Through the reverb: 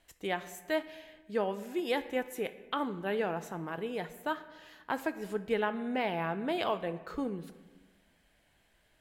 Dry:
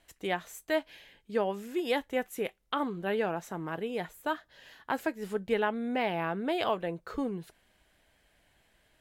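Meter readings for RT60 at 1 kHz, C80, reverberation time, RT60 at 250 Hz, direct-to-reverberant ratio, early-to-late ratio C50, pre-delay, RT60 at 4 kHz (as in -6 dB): 1.3 s, 15.5 dB, 1.3 s, 1.6 s, 12.0 dB, 13.5 dB, 20 ms, 0.90 s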